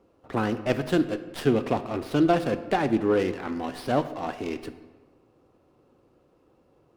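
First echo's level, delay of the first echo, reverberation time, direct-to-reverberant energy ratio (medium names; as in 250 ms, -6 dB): no echo, no echo, 1.4 s, 10.0 dB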